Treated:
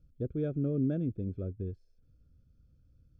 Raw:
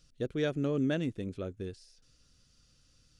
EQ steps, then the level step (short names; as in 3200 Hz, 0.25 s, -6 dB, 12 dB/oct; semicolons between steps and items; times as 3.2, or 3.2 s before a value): running mean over 46 samples; bell 73 Hz +8.5 dB 1.6 oct; 0.0 dB